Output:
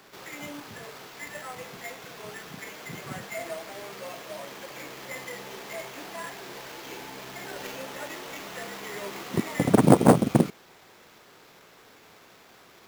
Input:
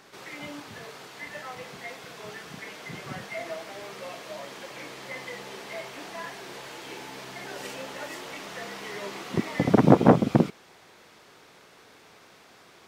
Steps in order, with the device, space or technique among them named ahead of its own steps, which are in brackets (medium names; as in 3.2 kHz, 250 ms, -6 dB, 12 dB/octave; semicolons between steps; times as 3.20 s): early companding sampler (sample-rate reducer 9.2 kHz, jitter 0%; companded quantiser 6-bit)